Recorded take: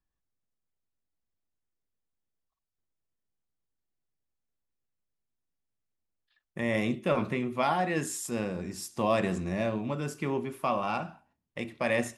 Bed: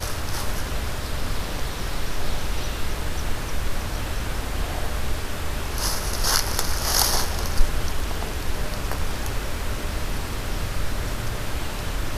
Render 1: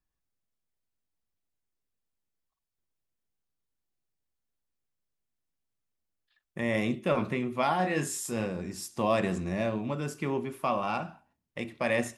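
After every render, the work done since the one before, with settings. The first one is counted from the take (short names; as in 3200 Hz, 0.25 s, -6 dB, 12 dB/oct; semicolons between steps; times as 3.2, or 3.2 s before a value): 7.77–8.46 doubler 27 ms -6 dB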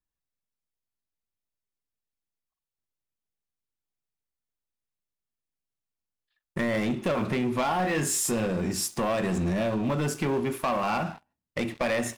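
compressor 6:1, threshold -31 dBFS, peak gain reduction 10 dB; sample leveller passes 3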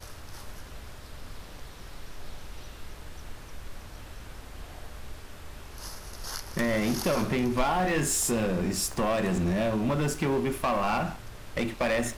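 add bed -16 dB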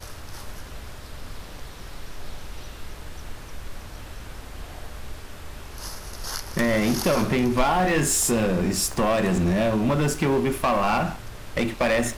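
gain +5 dB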